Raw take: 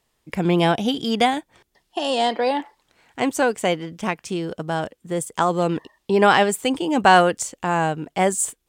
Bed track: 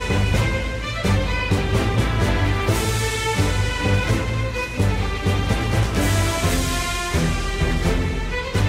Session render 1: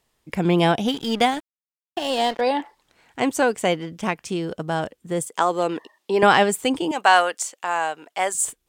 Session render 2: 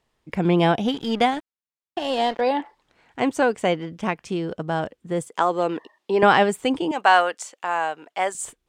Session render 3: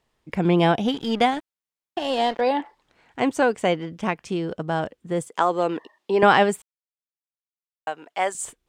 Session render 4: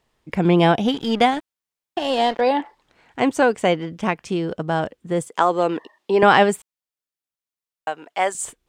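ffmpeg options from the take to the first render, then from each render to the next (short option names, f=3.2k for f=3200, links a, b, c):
-filter_complex "[0:a]asettb=1/sr,asplit=3[a][b][c];[a]atrim=end=0.874[d];[b]atrim=start=0.87:end=2.41,asetpts=PTS-STARTPTS,afade=t=in:d=0.004:c=qsin,afade=t=out:st=1.536:d=0.004:c=qsin,aeval=exprs='sgn(val(0))*max(abs(val(0))-0.0178,0)':c=same[e];[c]atrim=start=2.406[f];[d][e]acrossfade=d=0.004:c1=hsin:c2=qsin[g];[g][f]acrossfade=d=0.004:c1=qsin:c2=hsin,asettb=1/sr,asplit=3[h][i][j];[h]atrim=end=5.284[k];[i]atrim=start=5.28:end=6.23,asetpts=PTS-STARTPTS,afade=t=in:d=0.004:c=qsin,afade=t=out:st=0.946:d=0.004:c=qsin,highpass=320[l];[j]atrim=start=6.226[m];[k][l]acrossfade=d=0.004:c1=hsin:c2=qsin[n];[n][m]acrossfade=d=0.004:c1=qsin:c2=hsin,asettb=1/sr,asplit=3[o][p][q];[o]atrim=end=6.914[r];[p]atrim=start=6.91:end=8.35,asetpts=PTS-STARTPTS,afade=t=in:d=0.004:c=qsin,afade=t=out:st=1.436:d=0.004:c=qsin,highpass=690[s];[q]atrim=start=8.346[t];[r][s]acrossfade=d=0.004:c1=hsin:c2=qsin[u];[u][t]acrossfade=d=0.004:c1=qsin:c2=hsin"
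-af "aemphasis=mode=reproduction:type=50kf"
-filter_complex "[0:a]asplit=3[a][b][c];[a]atrim=end=6.62,asetpts=PTS-STARTPTS,afade=t=out:st=6.616:d=0.004:c=hsin[d];[b]atrim=start=6.62:end=7.87,asetpts=PTS-STARTPTS,volume=0[e];[c]atrim=start=7.87,asetpts=PTS-STARTPTS,afade=t=in:d=0.004:c=hsin[f];[d][e][f]concat=n=3:v=0:a=1"
-af "volume=3dB,alimiter=limit=-2dB:level=0:latency=1"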